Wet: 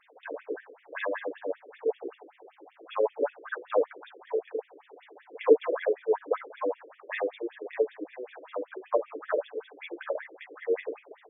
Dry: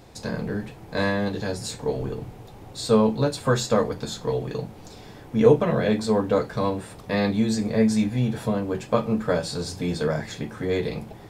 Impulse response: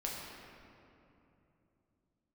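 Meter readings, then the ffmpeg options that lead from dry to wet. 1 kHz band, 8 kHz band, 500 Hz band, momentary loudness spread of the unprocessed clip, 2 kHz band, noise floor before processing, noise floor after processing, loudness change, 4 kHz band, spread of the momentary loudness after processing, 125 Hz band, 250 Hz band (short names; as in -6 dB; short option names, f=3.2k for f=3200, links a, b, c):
-7.0 dB, under -40 dB, -4.5 dB, 13 LU, -6.0 dB, -44 dBFS, -62 dBFS, -7.0 dB, under -15 dB, 13 LU, under -40 dB, -18.0 dB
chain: -af "afftfilt=real='re*between(b*sr/1024,390*pow(2600/390,0.5+0.5*sin(2*PI*5.2*pts/sr))/1.41,390*pow(2600/390,0.5+0.5*sin(2*PI*5.2*pts/sr))*1.41)':imag='im*between(b*sr/1024,390*pow(2600/390,0.5+0.5*sin(2*PI*5.2*pts/sr))/1.41,390*pow(2600/390,0.5+0.5*sin(2*PI*5.2*pts/sr))*1.41)':win_size=1024:overlap=0.75"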